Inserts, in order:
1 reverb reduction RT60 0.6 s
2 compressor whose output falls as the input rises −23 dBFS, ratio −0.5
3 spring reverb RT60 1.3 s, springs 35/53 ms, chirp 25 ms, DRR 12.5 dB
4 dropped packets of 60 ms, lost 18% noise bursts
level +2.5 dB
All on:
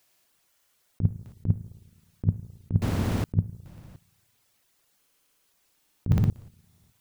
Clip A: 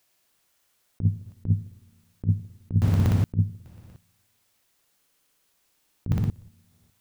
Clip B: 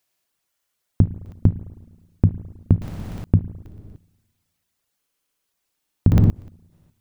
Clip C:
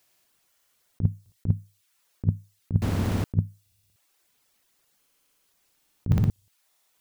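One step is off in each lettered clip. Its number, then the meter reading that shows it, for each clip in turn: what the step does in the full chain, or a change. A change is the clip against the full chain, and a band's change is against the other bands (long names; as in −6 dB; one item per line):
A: 1, 125 Hz band +4.5 dB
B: 2, 1 kHz band −6.5 dB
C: 3, change in momentary loudness spread −5 LU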